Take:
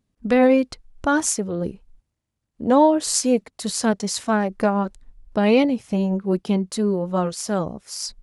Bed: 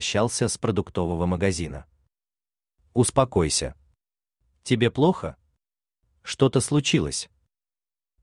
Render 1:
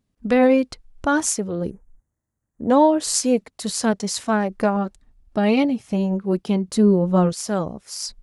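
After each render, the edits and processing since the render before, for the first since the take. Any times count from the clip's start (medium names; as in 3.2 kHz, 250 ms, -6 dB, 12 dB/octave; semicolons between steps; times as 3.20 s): 1.70–2.70 s: elliptic band-stop 1.9–6.3 kHz; 4.76–5.87 s: comb of notches 500 Hz; 6.68–7.33 s: bass shelf 380 Hz +9 dB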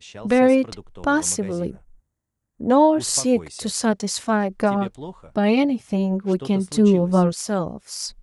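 add bed -15.5 dB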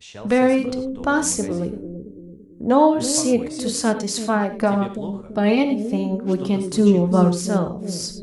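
on a send: bucket-brigade echo 335 ms, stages 1024, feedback 46%, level -8.5 dB; on the sum: gated-style reverb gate 130 ms flat, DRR 8.5 dB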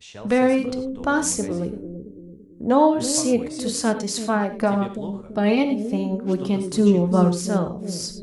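trim -1.5 dB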